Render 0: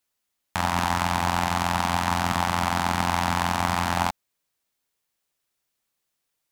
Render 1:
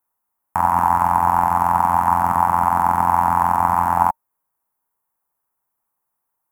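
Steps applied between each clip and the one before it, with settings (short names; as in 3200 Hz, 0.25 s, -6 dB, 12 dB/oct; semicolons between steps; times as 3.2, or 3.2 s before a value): EQ curve 610 Hz 0 dB, 920 Hz +13 dB, 3900 Hz -24 dB, 12000 Hz +4 dB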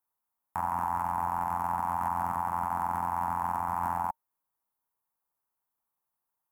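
limiter -12 dBFS, peak gain reduction 10 dB; gain -8.5 dB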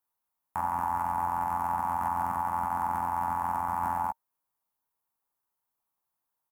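doubler 15 ms -8 dB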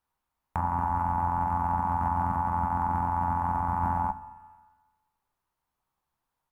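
RIAA curve playback; Schroeder reverb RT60 1.2 s, combs from 30 ms, DRR 13 dB; mismatched tape noise reduction encoder only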